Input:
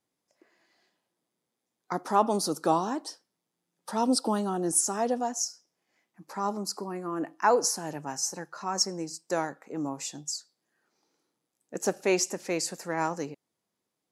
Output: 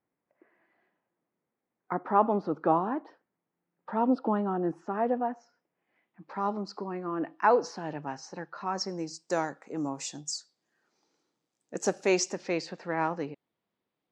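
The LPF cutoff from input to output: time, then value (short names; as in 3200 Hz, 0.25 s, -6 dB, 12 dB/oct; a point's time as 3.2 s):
LPF 24 dB/oct
5.47 s 2200 Hz
6.5 s 3800 Hz
8.64 s 3800 Hz
9.32 s 7700 Hz
12.08 s 7700 Hz
12.75 s 3700 Hz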